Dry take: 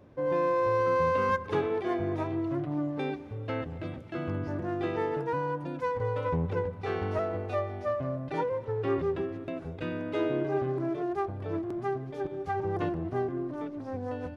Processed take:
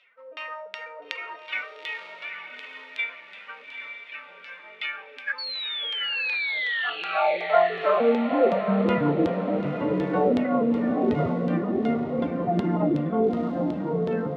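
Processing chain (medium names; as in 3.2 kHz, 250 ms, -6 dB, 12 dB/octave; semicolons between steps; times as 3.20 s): band-stop 940 Hz, Q 8; in parallel at -3 dB: peak limiter -23 dBFS, peak gain reduction 6.5 dB; on the sum: formant-preserving pitch shift +10 st; short-mantissa float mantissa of 4-bit; LFO low-pass saw down 2.7 Hz 330–3600 Hz; painted sound fall, 5.38–6.90 s, 1.7–4.5 kHz -35 dBFS; high-pass sweep 2.3 kHz -> 88 Hz, 6.55–8.90 s; echo that smears into a reverb 883 ms, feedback 42%, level -7 dB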